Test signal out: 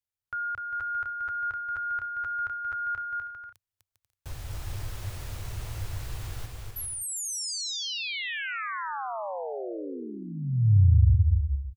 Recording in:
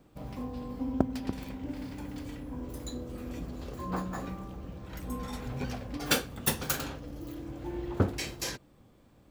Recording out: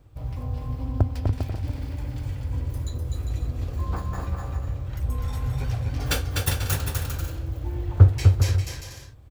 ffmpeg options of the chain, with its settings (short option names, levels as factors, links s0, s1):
-af "lowshelf=f=140:t=q:w=3:g=11,aecho=1:1:250|400|490|544|576.4:0.631|0.398|0.251|0.158|0.1"